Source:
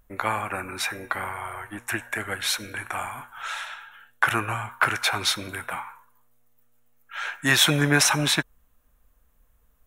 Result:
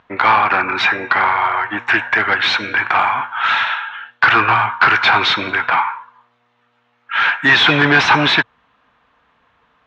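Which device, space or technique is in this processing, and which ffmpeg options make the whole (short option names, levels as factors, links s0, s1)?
overdrive pedal into a guitar cabinet: -filter_complex "[0:a]asplit=2[s0][s1];[s1]highpass=f=720:p=1,volume=15.8,asoftclip=type=tanh:threshold=0.668[s2];[s0][s2]amix=inputs=2:normalize=0,lowpass=f=4500:p=1,volume=0.501,highpass=89,equalizer=f=110:t=q:w=4:g=5,equalizer=f=550:t=q:w=4:g=-6,equalizer=f=940:t=q:w=4:g=4,lowpass=f=3900:w=0.5412,lowpass=f=3900:w=1.3066,volume=1.19"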